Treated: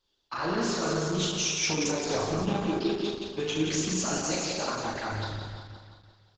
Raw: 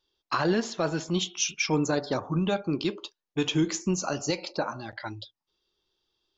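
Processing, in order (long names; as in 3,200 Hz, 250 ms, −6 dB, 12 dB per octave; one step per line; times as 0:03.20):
notch filter 3,100 Hz, Q 18
in parallel at +3 dB: compressor whose output falls as the input rises −28 dBFS, ratio −0.5
on the sum: brickwall limiter −12.5 dBFS, peak gain reduction 5.5 dB
flutter between parallel walls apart 6.6 metres, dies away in 0.77 s
multi-voice chorus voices 6, 0.33 Hz, delay 11 ms, depth 2.1 ms
on a send: repeating echo 174 ms, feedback 55%, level −4.5 dB
on the sum: level −6.5 dB
Opus 10 kbit/s 48,000 Hz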